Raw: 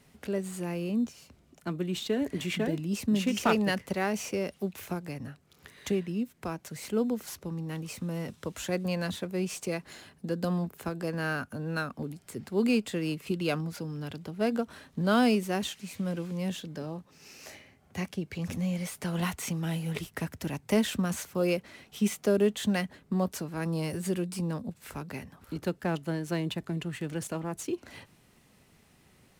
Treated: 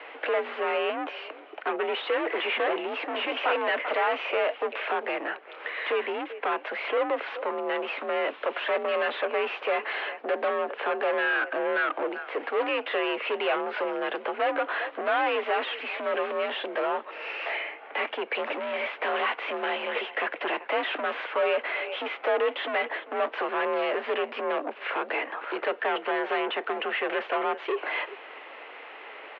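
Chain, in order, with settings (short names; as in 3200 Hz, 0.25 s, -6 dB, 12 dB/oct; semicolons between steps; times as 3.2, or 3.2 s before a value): speakerphone echo 0.39 s, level -27 dB; overdrive pedal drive 37 dB, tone 2400 Hz, clips at -12.5 dBFS; mistuned SSB +52 Hz 350–3000 Hz; gain -4 dB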